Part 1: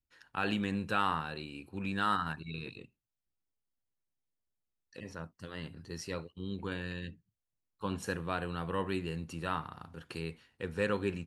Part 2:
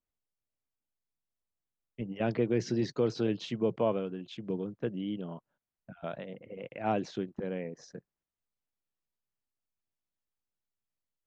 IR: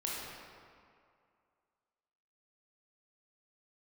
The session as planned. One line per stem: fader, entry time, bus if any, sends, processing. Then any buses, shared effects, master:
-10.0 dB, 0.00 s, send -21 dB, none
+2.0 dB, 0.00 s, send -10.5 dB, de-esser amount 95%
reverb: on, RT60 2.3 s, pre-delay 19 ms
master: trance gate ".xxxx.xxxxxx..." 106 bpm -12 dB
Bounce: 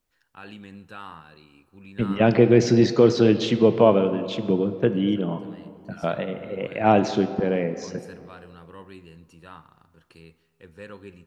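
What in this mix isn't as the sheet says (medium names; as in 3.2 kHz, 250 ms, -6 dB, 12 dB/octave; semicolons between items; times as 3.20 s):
stem 2 +2.0 dB -> +11.0 dB; master: missing trance gate ".xxxx.xxxxxx..." 106 bpm -12 dB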